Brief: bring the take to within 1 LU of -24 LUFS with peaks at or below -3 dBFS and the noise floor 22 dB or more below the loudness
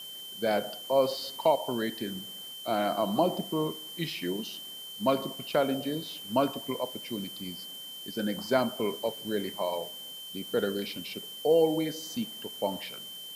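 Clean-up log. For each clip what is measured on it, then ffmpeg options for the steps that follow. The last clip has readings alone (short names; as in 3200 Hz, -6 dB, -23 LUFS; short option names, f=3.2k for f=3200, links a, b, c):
steady tone 3100 Hz; tone level -41 dBFS; noise floor -43 dBFS; noise floor target -53 dBFS; loudness -31.0 LUFS; peak -11.0 dBFS; loudness target -24.0 LUFS
-> -af "bandreject=f=3.1k:w=30"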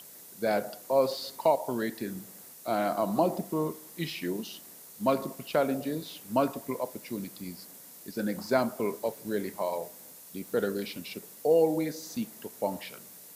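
steady tone none; noise floor -50 dBFS; noise floor target -53 dBFS
-> -af "afftdn=nr=6:nf=-50"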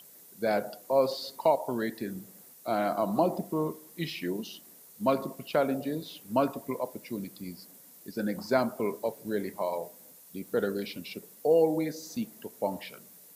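noise floor -54 dBFS; loudness -31.0 LUFS; peak -11.5 dBFS; loudness target -24.0 LUFS
-> -af "volume=7dB"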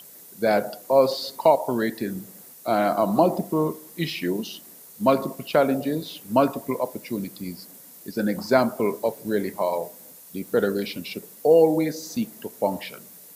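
loudness -24.0 LUFS; peak -4.5 dBFS; noise floor -47 dBFS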